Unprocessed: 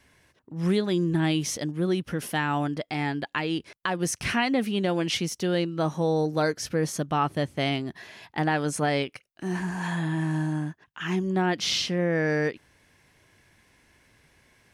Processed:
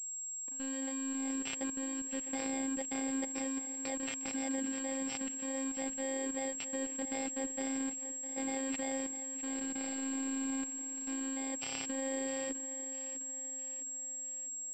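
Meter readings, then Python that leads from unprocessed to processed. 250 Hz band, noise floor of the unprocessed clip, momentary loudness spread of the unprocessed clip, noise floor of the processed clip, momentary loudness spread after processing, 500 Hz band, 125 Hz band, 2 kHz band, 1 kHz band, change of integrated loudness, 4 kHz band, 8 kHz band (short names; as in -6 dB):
-9.5 dB, -65 dBFS, 7 LU, -42 dBFS, 3 LU, -14.0 dB, -34.5 dB, -14.0 dB, -15.5 dB, -9.5 dB, -15.5 dB, +4.0 dB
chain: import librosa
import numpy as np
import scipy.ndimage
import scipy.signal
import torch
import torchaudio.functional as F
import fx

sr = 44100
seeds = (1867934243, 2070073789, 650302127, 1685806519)

y = fx.bit_reversed(x, sr, seeds[0], block=32)
y = scipy.signal.sosfilt(scipy.signal.butter(4, 200.0, 'highpass', fs=sr, output='sos'), y)
y = fx.peak_eq(y, sr, hz=1200.0, db=-14.5, octaves=0.54)
y = np.sign(y) * np.maximum(np.abs(y) - 10.0 ** (-46.5 / 20.0), 0.0)
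y = fx.air_absorb(y, sr, metres=76.0)
y = fx.hum_notches(y, sr, base_hz=50, count=6)
y = fx.level_steps(y, sr, step_db=20)
y = fx.echo_feedback(y, sr, ms=656, feedback_pct=49, wet_db=-12.0)
y = fx.robotise(y, sr, hz=267.0)
y = fx.pwm(y, sr, carrier_hz=7600.0)
y = F.gain(torch.from_numpy(y), 4.5).numpy()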